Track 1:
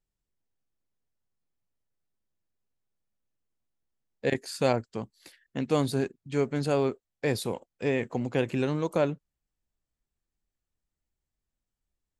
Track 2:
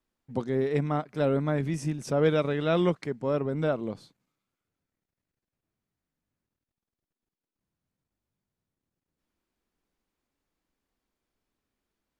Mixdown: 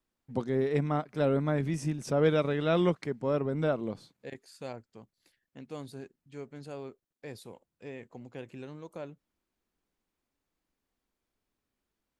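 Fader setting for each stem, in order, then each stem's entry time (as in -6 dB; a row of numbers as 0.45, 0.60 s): -16.0, -1.5 dB; 0.00, 0.00 s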